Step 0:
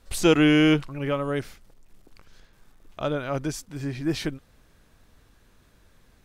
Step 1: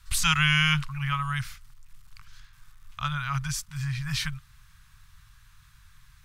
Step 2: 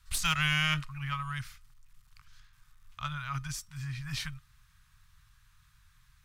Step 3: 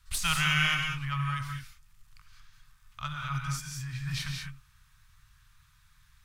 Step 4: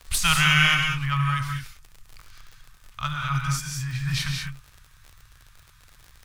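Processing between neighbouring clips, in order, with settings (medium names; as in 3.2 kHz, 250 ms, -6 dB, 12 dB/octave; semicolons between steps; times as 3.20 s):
Chebyshev band-stop 140–1100 Hz, order 3; trim +4.5 dB
Chebyshev shaper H 2 -17 dB, 4 -19 dB, 5 -34 dB, 7 -28 dB, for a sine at -9 dBFS; feedback comb 620 Hz, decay 0.23 s, harmonics all, mix 50%
gated-style reverb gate 230 ms rising, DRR 2 dB
crackle 60 per s -42 dBFS; trim +7.5 dB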